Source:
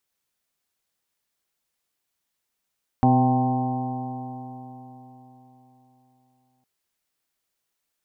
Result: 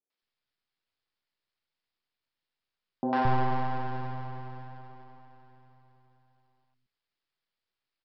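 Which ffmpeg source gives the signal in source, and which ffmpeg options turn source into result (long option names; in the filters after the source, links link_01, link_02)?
-f lavfi -i "aevalsrc='0.112*pow(10,-3*t/4.02)*sin(2*PI*126.11*t)+0.141*pow(10,-3*t/4.02)*sin(2*PI*252.86*t)+0.0251*pow(10,-3*t/4.02)*sin(2*PI*380.88*t)+0.0211*pow(10,-3*t/4.02)*sin(2*PI*510.81*t)+0.0282*pow(10,-3*t/4.02)*sin(2*PI*643.25*t)+0.126*pow(10,-3*t/4.02)*sin(2*PI*778.79*t)+0.0251*pow(10,-3*t/4.02)*sin(2*PI*918*t)+0.0178*pow(10,-3*t/4.02)*sin(2*PI*1061.42*t)':duration=3.61:sample_rate=44100"
-filter_complex "[0:a]aresample=11025,aeval=exprs='max(val(0),0)':channel_layout=same,aresample=44100,acrossover=split=210|660[link_01][link_02][link_03];[link_03]adelay=100[link_04];[link_01]adelay=220[link_05];[link_05][link_02][link_04]amix=inputs=3:normalize=0"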